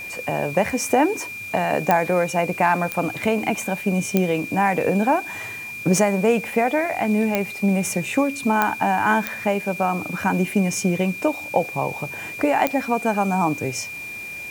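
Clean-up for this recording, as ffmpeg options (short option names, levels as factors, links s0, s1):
-af "adeclick=t=4,bandreject=f=2400:w=30,afwtdn=0.0056"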